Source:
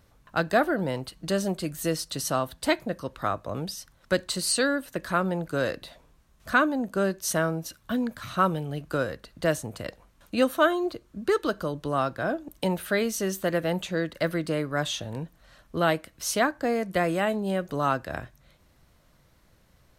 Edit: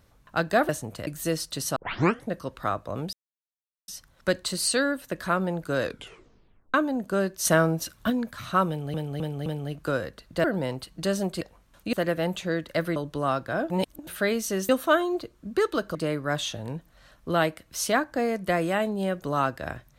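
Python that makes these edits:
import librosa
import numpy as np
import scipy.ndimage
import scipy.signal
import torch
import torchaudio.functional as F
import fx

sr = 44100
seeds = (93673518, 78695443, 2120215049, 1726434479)

y = fx.edit(x, sr, fx.swap(start_s=0.69, length_s=0.97, other_s=9.5, other_length_s=0.38),
    fx.tape_start(start_s=2.35, length_s=0.54),
    fx.insert_silence(at_s=3.72, length_s=0.75),
    fx.tape_stop(start_s=5.67, length_s=0.91),
    fx.clip_gain(start_s=7.29, length_s=0.65, db=5.0),
    fx.repeat(start_s=8.52, length_s=0.26, count=4),
    fx.swap(start_s=10.4, length_s=1.26, other_s=13.39, other_length_s=1.03),
    fx.reverse_span(start_s=12.4, length_s=0.37), tone=tone)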